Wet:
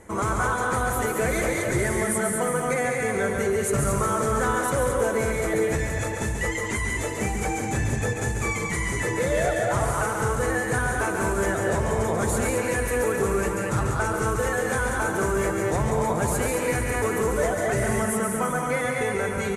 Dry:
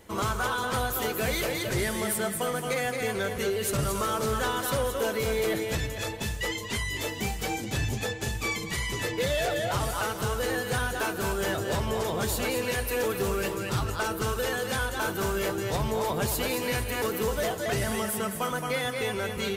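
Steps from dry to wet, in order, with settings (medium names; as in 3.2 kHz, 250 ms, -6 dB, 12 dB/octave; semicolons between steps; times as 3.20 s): steep low-pass 11 kHz 36 dB/octave; high-order bell 3.8 kHz -12.5 dB 1.2 oct; in parallel at -2 dB: peak limiter -26 dBFS, peak gain reduction 6.5 dB; 16.01–16.80 s: on the sum: crackle 14 per s -34 dBFS; on a send: loudspeakers at several distances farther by 48 m -5 dB, 65 m -9 dB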